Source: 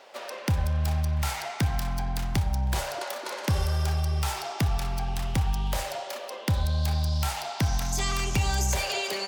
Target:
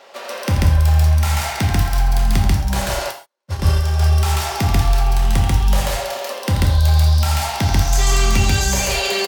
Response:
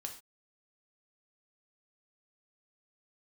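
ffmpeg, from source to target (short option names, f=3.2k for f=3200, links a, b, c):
-filter_complex "[0:a]aecho=1:1:84.55|139.9:0.355|1,asplit=3[a][b][c];[a]afade=t=out:st=3.1:d=0.02[d];[b]agate=range=-55dB:threshold=-21dB:ratio=16:detection=peak,afade=t=in:st=3.1:d=0.02,afade=t=out:st=3.99:d=0.02[e];[c]afade=t=in:st=3.99:d=0.02[f];[d][e][f]amix=inputs=3:normalize=0[g];[1:a]atrim=start_sample=2205[h];[g][h]afir=irnorm=-1:irlink=0,volume=9dB"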